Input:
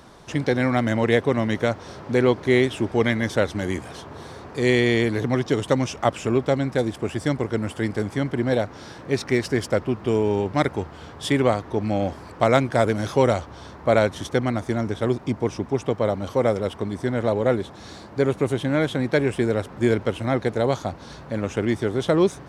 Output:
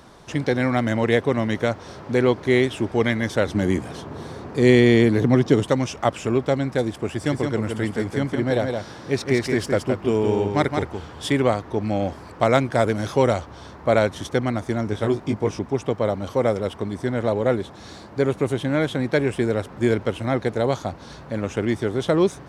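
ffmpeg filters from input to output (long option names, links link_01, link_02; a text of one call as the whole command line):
ffmpeg -i in.wav -filter_complex "[0:a]asettb=1/sr,asplit=3[link_01][link_02][link_03];[link_01]atrim=end=3.464[link_04];[link_02]atrim=start=3.46:end=5.66,asetpts=PTS-STARTPTS,afade=type=in:duration=0.004:curve=qsin,afade=type=out:start_time=2.196:duration=0.004:curve=qsin,equalizer=frequency=200:width=0.49:gain=7[link_05];[link_03]atrim=start=5.656[link_06];[link_04][link_05]acrossfade=duration=0.004:curve1=hsin:curve2=qsin[link_07];[link_07][link_06]acrossfade=duration=0.004:curve1=qsin:curve2=hsin,asettb=1/sr,asplit=3[link_08][link_09][link_10];[link_08]atrim=end=7.074[link_11];[link_09]atrim=start=7.07:end=11.36,asetpts=PTS-STARTPTS,afade=type=in:duration=0.004:curve=qsin,afade=type=out:start_time=4.286:duration=0.004:curve=qsin,aecho=1:1:168:0.562,atrim=end_sample=189189[link_12];[link_10]atrim=start=11.356[link_13];[link_11][link_12]acrossfade=duration=0.004:curve1=hsin:curve2=qsin[link_14];[link_14][link_13]acrossfade=duration=0.004:curve1=qsin:curve2=hsin,asettb=1/sr,asplit=3[link_15][link_16][link_17];[link_15]atrim=end=14.904[link_18];[link_16]atrim=start=14.9:end=15.59,asetpts=PTS-STARTPTS,afade=type=in:duration=0.004:curve=qsin,afade=type=out:start_time=0.686:duration=0.004:curve=qsin,asplit=2[link_19][link_20];[link_20]adelay=19,volume=-5dB[link_21];[link_19][link_21]amix=inputs=2:normalize=0,atrim=end_sample=30429[link_22];[link_17]atrim=start=15.586[link_23];[link_18][link_22]acrossfade=duration=0.004:curve1=hsin:curve2=qsin[link_24];[link_24][link_23]acrossfade=duration=0.004:curve1=qsin:curve2=hsin" out.wav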